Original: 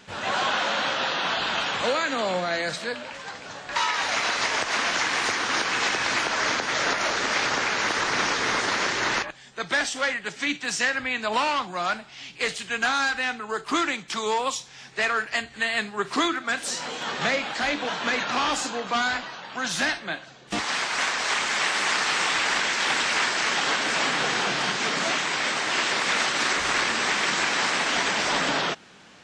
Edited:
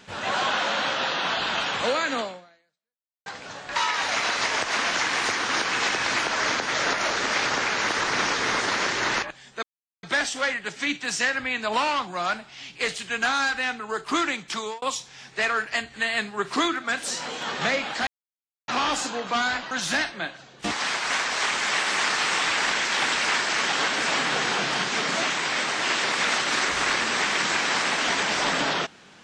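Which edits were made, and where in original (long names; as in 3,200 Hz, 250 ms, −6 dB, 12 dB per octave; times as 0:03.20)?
0:02.19–0:03.26: fade out exponential
0:09.63: splice in silence 0.40 s
0:14.15–0:14.42: fade out
0:17.67–0:18.28: silence
0:19.31–0:19.59: remove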